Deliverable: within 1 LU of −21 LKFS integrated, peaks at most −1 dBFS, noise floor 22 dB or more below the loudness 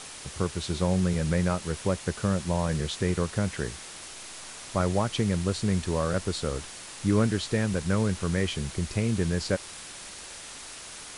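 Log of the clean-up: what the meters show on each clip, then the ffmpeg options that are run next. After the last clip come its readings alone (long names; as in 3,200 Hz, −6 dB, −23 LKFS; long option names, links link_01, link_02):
background noise floor −43 dBFS; target noise floor −50 dBFS; integrated loudness −28.0 LKFS; sample peak −11.0 dBFS; target loudness −21.0 LKFS
→ -af "afftdn=noise_reduction=7:noise_floor=-43"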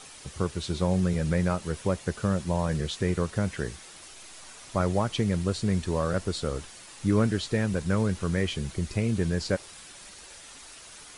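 background noise floor −47 dBFS; target noise floor −51 dBFS
→ -af "afftdn=noise_reduction=6:noise_floor=-47"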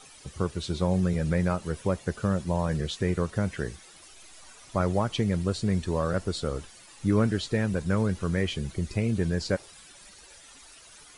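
background noise floor −51 dBFS; integrated loudness −28.5 LKFS; sample peak −11.0 dBFS; target loudness −21.0 LKFS
→ -af "volume=7.5dB"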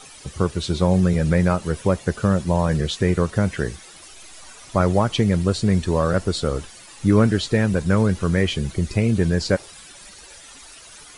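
integrated loudness −21.0 LKFS; sample peak −3.5 dBFS; background noise floor −44 dBFS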